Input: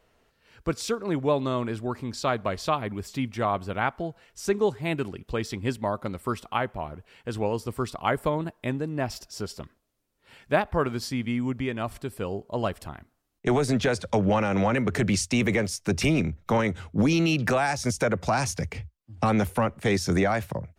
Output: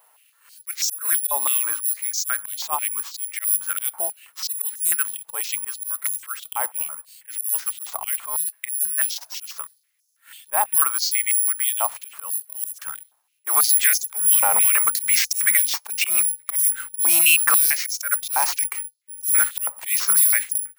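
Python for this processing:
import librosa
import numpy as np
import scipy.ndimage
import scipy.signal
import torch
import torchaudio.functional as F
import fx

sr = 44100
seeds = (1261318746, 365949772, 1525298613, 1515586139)

y = (np.kron(x[::4], np.eye(4)[0]) * 4)[:len(x)]
y = fx.auto_swell(y, sr, attack_ms=145.0)
y = fx.filter_held_highpass(y, sr, hz=6.1, low_hz=880.0, high_hz=5900.0)
y = y * 10.0 ** (1.0 / 20.0)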